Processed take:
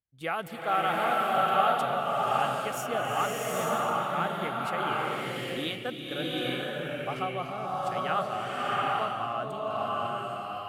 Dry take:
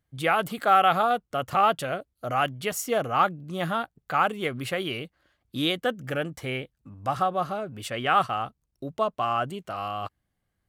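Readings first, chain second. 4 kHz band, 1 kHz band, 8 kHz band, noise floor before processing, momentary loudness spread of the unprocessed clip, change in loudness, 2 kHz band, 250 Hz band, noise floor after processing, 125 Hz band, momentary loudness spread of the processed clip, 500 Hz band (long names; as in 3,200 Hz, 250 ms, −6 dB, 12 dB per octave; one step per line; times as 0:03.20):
−2.0 dB, −2.5 dB, −3.0 dB, −79 dBFS, 12 LU, −3.0 dB, −2.5 dB, −3.0 dB, −39 dBFS, −4.0 dB, 8 LU, −2.0 dB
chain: noise gate −34 dBFS, range −11 dB
slow-attack reverb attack 800 ms, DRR −5 dB
level −8.5 dB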